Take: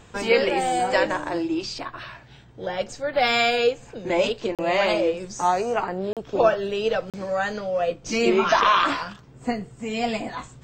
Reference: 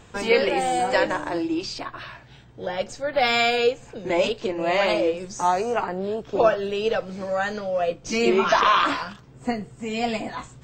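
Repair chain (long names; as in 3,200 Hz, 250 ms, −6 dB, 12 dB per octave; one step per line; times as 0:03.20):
repair the gap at 0:04.55/0:06.13/0:07.10, 37 ms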